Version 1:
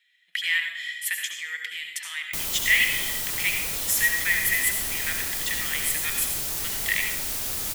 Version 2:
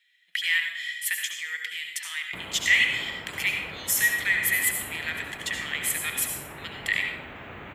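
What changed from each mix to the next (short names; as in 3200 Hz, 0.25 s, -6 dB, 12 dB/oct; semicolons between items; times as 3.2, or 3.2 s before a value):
background: add inverse Chebyshev low-pass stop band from 4800 Hz, stop band 40 dB; master: add HPF 83 Hz 12 dB/oct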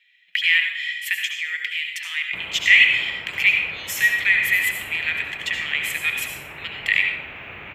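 master: add fifteen-band EQ 250 Hz -4 dB, 2500 Hz +12 dB, 10000 Hz -10 dB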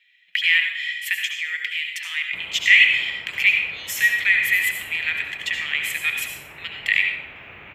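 background -4.5 dB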